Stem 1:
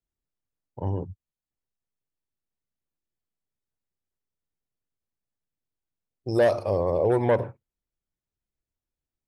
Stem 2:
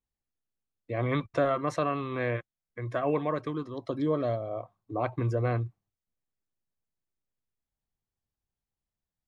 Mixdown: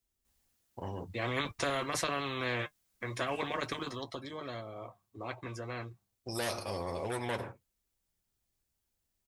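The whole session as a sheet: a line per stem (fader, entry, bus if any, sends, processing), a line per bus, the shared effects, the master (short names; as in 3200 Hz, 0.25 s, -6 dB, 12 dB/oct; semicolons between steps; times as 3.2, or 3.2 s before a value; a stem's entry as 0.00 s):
-10.0 dB, 0.00 s, no send, dry
3.94 s -1 dB -> 4.18 s -13 dB, 0.25 s, no send, dry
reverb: off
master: high shelf 3700 Hz +8 dB; notch comb 150 Hz; spectral compressor 2:1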